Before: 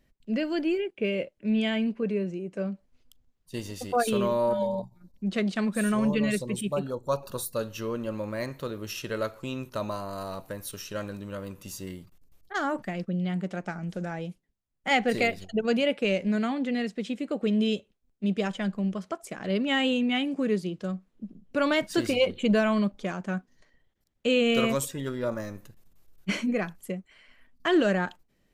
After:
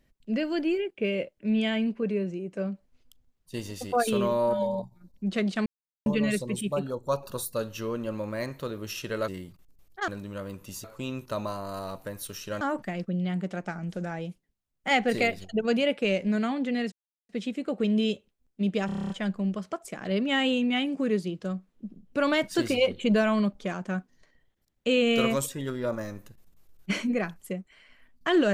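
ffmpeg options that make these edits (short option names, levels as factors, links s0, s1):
-filter_complex "[0:a]asplit=16[s0][s1][s2][s3][s4][s5][s6][s7][s8][s9][s10][s11][s12][s13][s14][s15];[s0]atrim=end=5.66,asetpts=PTS-STARTPTS,afade=t=out:st=5.656:d=0.004:c=hsin[s16];[s1]atrim=start=5.66:end=6.06,asetpts=PTS-STARTPTS,volume=0[s17];[s2]atrim=start=6.06:end=9.282,asetpts=PTS-STARTPTS,afade=t=in:d=0.004:c=hsin[s18];[s3]atrim=start=11.808:end=12.612[s19];[s4]atrim=start=11.048:end=11.812[s20];[s5]atrim=start=9.278:end=11.052[s21];[s6]atrim=start=12.608:end=16.92,asetpts=PTS-STARTPTS,afade=t=out:st=4.308:d=0.004:c=hsin,apad=pad_dur=0.37[s22];[s7]atrim=start=16.92:end=18.522,asetpts=PTS-STARTPTS,afade=t=in:d=0.004:c=hsin[s23];[s8]atrim=start=18.488:end=18.522[s24];[s9]atrim=start=18.488:end=18.522[s25];[s10]atrim=start=18.488:end=18.522[s26];[s11]atrim=start=18.488:end=18.522[s27];[s12]atrim=start=18.488:end=18.522[s28];[s13]atrim=start=18.488:end=18.522[s29];[s14]atrim=start=18.488:end=18.522[s30];[s15]atrim=start=18.488[s31];[s16][s17][s18]concat=n=3:v=0:a=1[s32];[s32][s19]acrossfade=d=0.004:c1=hsin:c2=hsin[s33];[s33][s20]acrossfade=d=0.004:c1=hsin:c2=hsin[s34];[s34][s21]acrossfade=d=0.004:c1=hsin:c2=hsin[s35];[s22][s23]concat=n=2:v=0:a=1[s36];[s35][s36]acrossfade=d=0.004:c1=hsin:c2=hsin[s37];[s37][s24]acrossfade=d=0.004:c1=hsin:c2=hsin[s38];[s38][s25]acrossfade=d=0.004:c1=hsin:c2=hsin[s39];[s39][s26]acrossfade=d=0.004:c1=hsin:c2=hsin[s40];[s40][s27]acrossfade=d=0.004:c1=hsin:c2=hsin[s41];[s41][s28]acrossfade=d=0.004:c1=hsin:c2=hsin[s42];[s42][s29]acrossfade=d=0.004:c1=hsin:c2=hsin[s43];[s43][s30]acrossfade=d=0.004:c1=hsin:c2=hsin[s44];[s44][s31]acrossfade=d=0.004:c1=hsin:c2=hsin"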